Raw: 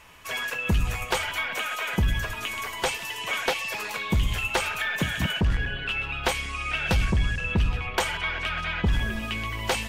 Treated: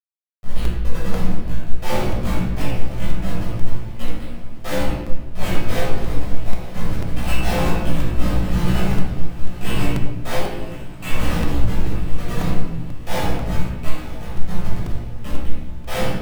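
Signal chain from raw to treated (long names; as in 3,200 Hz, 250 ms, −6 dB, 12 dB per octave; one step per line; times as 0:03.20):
Chebyshev high-pass filter 170 Hz, order 2
flat-topped bell 1,500 Hz −8 dB 1.2 octaves
comparator with hysteresis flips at −25.5 dBFS
tempo change 0.61×
hard clipping −33 dBFS, distortion −13 dB
double-tracking delay 17 ms −3 dB
on a send: feedback delay with all-pass diffusion 918 ms, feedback 46%, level −14.5 dB
on the sum: rectangular room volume 590 cubic metres, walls mixed, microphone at 6.3 metres
regular buffer underruns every 0.49 s, samples 128, repeat, from 0:00.65
level −1 dB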